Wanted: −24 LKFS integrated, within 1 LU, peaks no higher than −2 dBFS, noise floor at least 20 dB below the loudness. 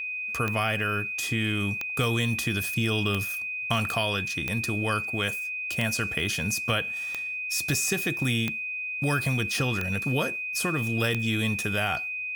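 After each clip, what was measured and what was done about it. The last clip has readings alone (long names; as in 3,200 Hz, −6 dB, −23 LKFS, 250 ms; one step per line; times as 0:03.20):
number of clicks 9; interfering tone 2,500 Hz; level of the tone −30 dBFS; integrated loudness −26.5 LKFS; sample peak −11.0 dBFS; target loudness −24.0 LKFS
→ click removal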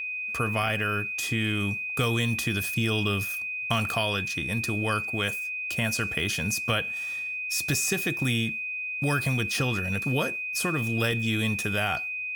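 number of clicks 0; interfering tone 2,500 Hz; level of the tone −30 dBFS
→ notch filter 2,500 Hz, Q 30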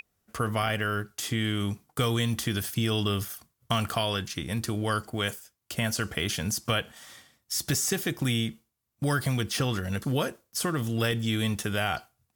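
interfering tone none found; integrated loudness −29.0 LKFS; sample peak −12.0 dBFS; target loudness −24.0 LKFS
→ level +5 dB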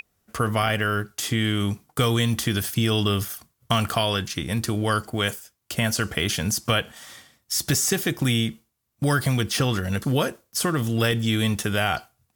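integrated loudness −24.0 LKFS; sample peak −7.0 dBFS; background noise floor −74 dBFS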